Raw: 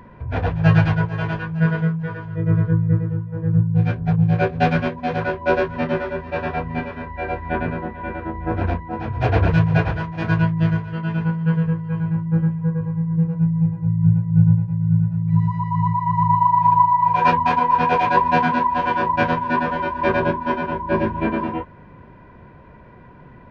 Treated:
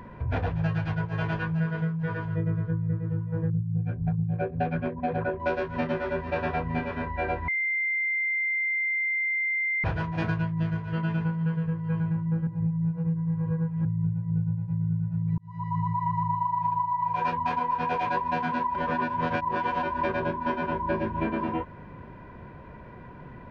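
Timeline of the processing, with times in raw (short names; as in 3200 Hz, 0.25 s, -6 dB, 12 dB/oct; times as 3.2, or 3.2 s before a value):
3.5–5.4 formant sharpening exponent 1.5
7.48–9.84 bleep 2090 Hz -23 dBFS
12.47–13.85 reverse
15.38–16.06 fade in
18.75–19.83 reverse
whole clip: compressor 10:1, threshold -24 dBFS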